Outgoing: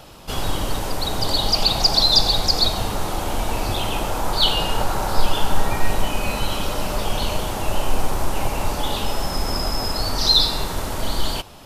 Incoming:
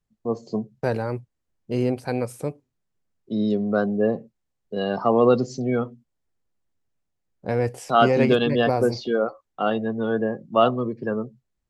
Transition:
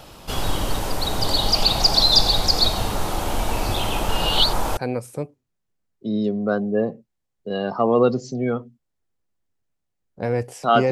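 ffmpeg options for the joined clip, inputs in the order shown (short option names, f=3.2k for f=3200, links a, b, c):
-filter_complex "[0:a]apad=whole_dur=10.91,atrim=end=10.91,asplit=2[a][b];[a]atrim=end=4.092[c];[b]atrim=start=4.088:end=4.772,asetpts=PTS-STARTPTS,areverse[d];[1:a]atrim=start=2.028:end=8.17[e];[c][d]acrossfade=d=0.004:c1=hsin:c2=hsin[f];[f][e]acrossfade=d=0.004:c1=hsin:c2=hsin"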